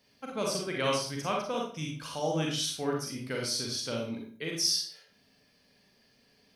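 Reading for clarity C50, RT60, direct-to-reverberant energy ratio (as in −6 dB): 2.5 dB, 0.45 s, −1.5 dB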